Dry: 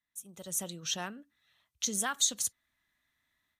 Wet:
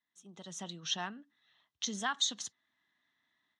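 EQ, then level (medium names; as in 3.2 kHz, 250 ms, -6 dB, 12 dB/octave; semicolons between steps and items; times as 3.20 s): dynamic bell 380 Hz, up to -6 dB, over -55 dBFS, Q 1.2; cabinet simulation 210–5000 Hz, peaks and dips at 540 Hz -9 dB, 1.4 kHz -5 dB, 2.4 kHz -9 dB, 4.6 kHz -6 dB; +3.5 dB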